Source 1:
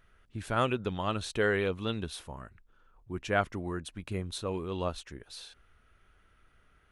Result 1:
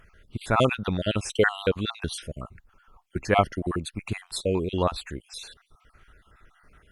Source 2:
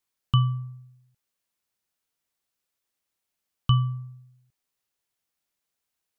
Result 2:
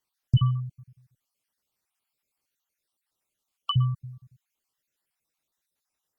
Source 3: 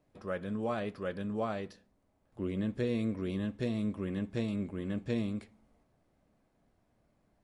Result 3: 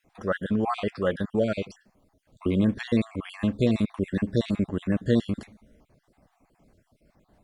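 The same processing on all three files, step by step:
time-frequency cells dropped at random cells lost 46%
Opus 64 kbit/s 48,000 Hz
loudness normalisation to −27 LKFS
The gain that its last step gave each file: +9.5, +2.5, +11.5 decibels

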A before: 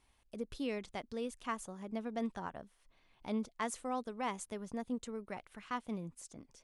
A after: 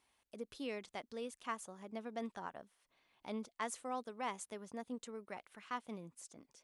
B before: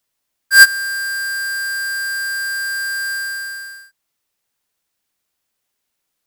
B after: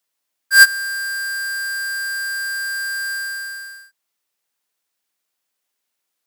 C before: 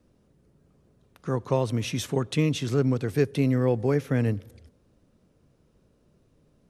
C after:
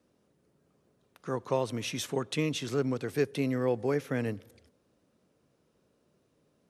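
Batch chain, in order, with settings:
high-pass filter 330 Hz 6 dB per octave
level −2 dB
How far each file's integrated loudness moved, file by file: −4.5, −2.0, −5.5 LU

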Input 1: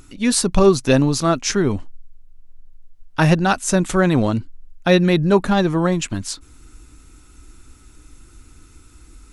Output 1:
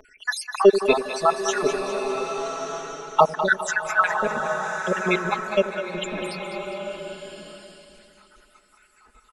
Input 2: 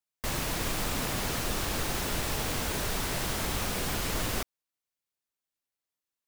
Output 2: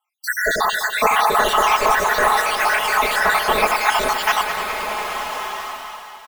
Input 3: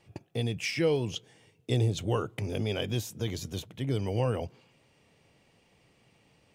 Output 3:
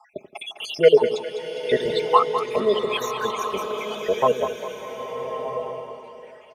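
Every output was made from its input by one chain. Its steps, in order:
time-frequency cells dropped at random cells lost 74%
three-way crossover with the lows and the highs turned down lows −24 dB, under 480 Hz, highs −15 dB, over 2,500 Hz
comb filter 4.7 ms, depth 95%
echo with a time of its own for lows and highs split 490 Hz, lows 84 ms, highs 203 ms, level −10 dB
slow-attack reverb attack 1,290 ms, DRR 6 dB
normalise the peak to −2 dBFS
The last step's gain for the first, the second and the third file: +5.5, +22.0, +18.5 decibels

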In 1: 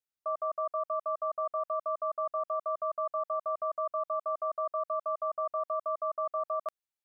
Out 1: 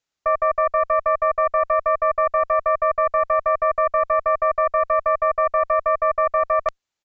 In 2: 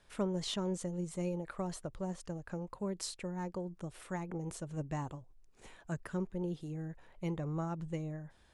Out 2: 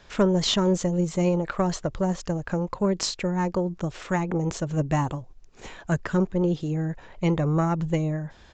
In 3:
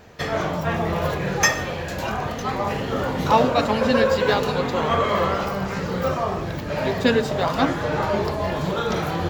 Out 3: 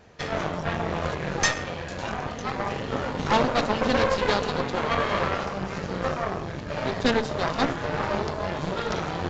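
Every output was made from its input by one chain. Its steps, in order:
harmonic generator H 6 −12 dB, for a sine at −4 dBFS
downsampling to 16,000 Hz
normalise the peak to −9 dBFS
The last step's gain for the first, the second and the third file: +13.0, +14.5, −6.0 decibels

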